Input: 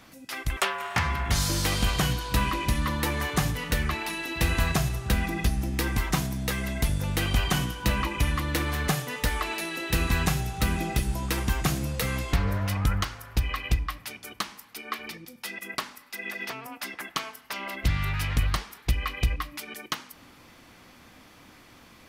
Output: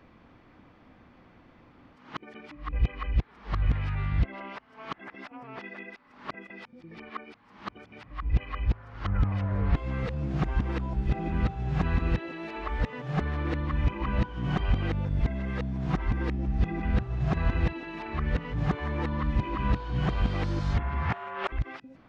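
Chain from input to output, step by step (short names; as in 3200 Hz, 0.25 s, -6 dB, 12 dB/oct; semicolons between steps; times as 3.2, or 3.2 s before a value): whole clip reversed; tape spacing loss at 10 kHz 41 dB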